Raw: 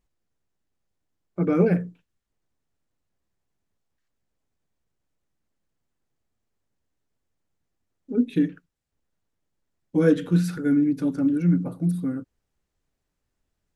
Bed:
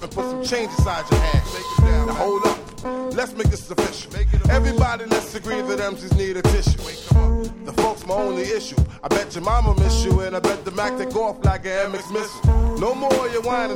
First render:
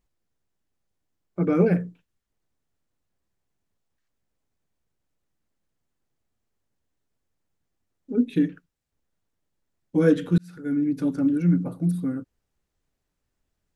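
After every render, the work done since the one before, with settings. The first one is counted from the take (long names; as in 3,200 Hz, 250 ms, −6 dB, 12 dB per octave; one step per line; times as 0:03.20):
0:10.38–0:11.01: fade in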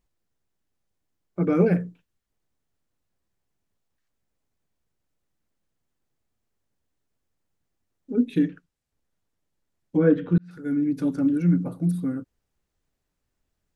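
0:08.44–0:10.51: treble cut that deepens with the level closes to 1,800 Hz, closed at −18.5 dBFS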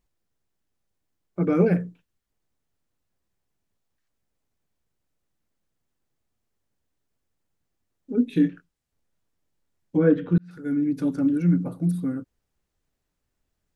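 0:08.30–0:09.98: double-tracking delay 24 ms −8 dB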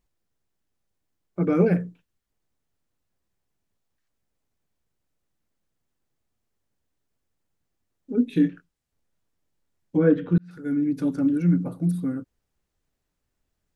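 no processing that can be heard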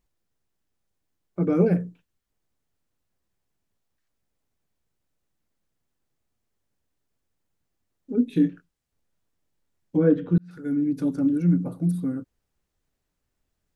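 dynamic equaliser 2,000 Hz, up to −6 dB, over −43 dBFS, Q 0.72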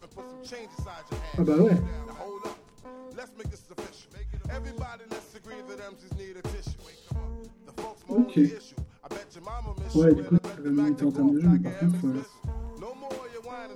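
mix in bed −18.5 dB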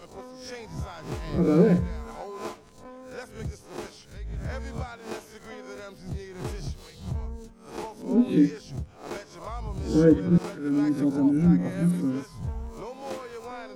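peak hold with a rise ahead of every peak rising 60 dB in 0.42 s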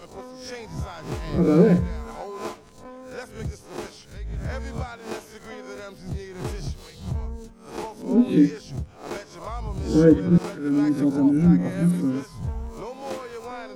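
level +3 dB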